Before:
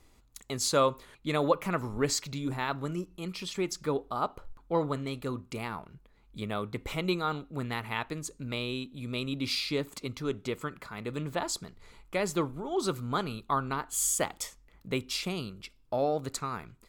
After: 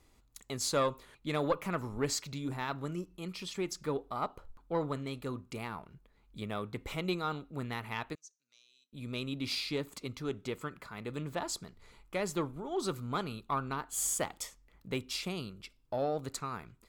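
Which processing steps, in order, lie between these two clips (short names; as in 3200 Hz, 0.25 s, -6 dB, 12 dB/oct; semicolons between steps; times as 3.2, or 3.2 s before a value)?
one diode to ground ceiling -16 dBFS; 8.15–8.93 band-pass 5900 Hz, Q 11; gain -3.5 dB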